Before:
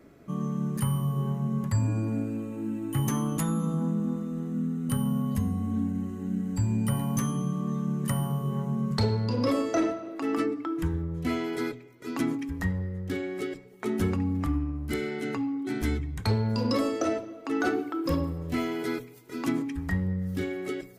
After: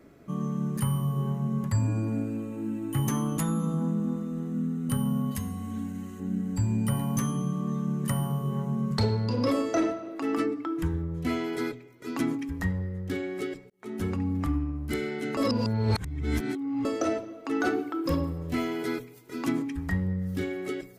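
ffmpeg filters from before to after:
-filter_complex "[0:a]asettb=1/sr,asplit=3[s0][s1][s2];[s0]atrim=end=5.314[s3];[s1]atrim=start=5.31:end=6.2,asetpts=PTS-STARTPTS,afade=t=in:d=0.004:c=qsin,afade=t=out:st=0.886:d=0.004:c=qsin,tiltshelf=f=1100:g=-6[s4];[s2]atrim=start=6.196[s5];[s3][s4]acrossfade=d=0.004:c1=hsin:c2=qsin[s6];[s6][s5]acrossfade=d=0.004:c1=qsin:c2=hsin,asplit=4[s7][s8][s9][s10];[s7]atrim=end=13.7,asetpts=PTS-STARTPTS,afade=t=out:st=13.696:d=0.004:c=hsin[s11];[s8]atrim=start=13.7:end=15.372,asetpts=PTS-STARTPTS,afade=t=in:d=0.78:c=qsin[s12];[s9]atrim=start=15.368:end=16.852,asetpts=PTS-STARTPTS,areverse[s13];[s10]atrim=start=16.848[s14];[s11][s12]concat=n=2:v=0:a=1[s15];[s15][s13]acrossfade=d=0.004:c1=hsin:c2=hsin[s16];[s16][s14]acrossfade=d=0.004:c1=hsin:c2=hsin"

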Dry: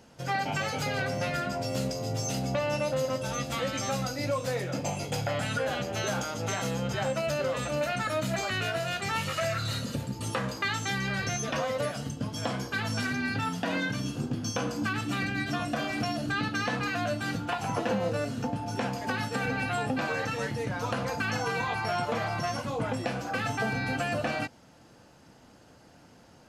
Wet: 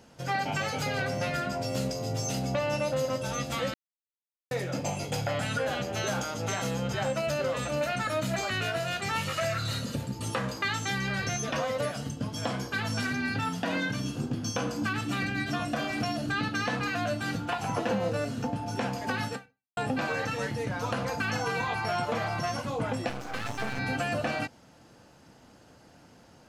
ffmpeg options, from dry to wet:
-filter_complex "[0:a]asettb=1/sr,asplit=3[s0][s1][s2];[s0]atrim=end=23.094[s3];[s1]atrim=start=23.09:end=23.79,asetpts=PTS-STARTPTS,afade=t=in:d=0.004:c=qsin,afade=t=out:st=0.696:d=0.004:c=qsin,aeval=exprs='max(val(0),0)':c=same[s4];[s2]atrim=start=23.786[s5];[s3][s4]acrossfade=d=0.004:c1=hsin:c2=qsin[s6];[s6][s5]acrossfade=d=0.004:c1=qsin:c2=hsin,asplit=4[s7][s8][s9][s10];[s7]atrim=end=3.74,asetpts=PTS-STARTPTS,afade=t=out:st=3.736:d=0.004:c=hsin[s11];[s8]atrim=start=3.74:end=4.51,asetpts=PTS-STARTPTS,volume=0[s12];[s9]atrim=start=4.51:end=19.77,asetpts=PTS-STARTPTS,afade=t=in:d=0.004:c=hsin,afade=t=out:st=14.82:d=0.44:c=exp[s13];[s10]atrim=start=19.77,asetpts=PTS-STARTPTS,afade=t=in:d=0.004:c=hsin[s14];[s11][s12][s13][s14]concat=n=4:v=0:a=1"

